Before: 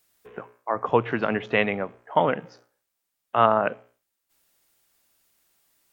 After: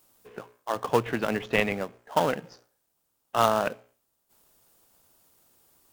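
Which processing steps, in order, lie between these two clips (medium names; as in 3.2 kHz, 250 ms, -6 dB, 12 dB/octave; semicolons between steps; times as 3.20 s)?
treble shelf 3.4 kHz +10.5 dB; in parallel at -7.5 dB: sample-rate reducer 2.2 kHz, jitter 20%; on the sum: trim -5.5 dB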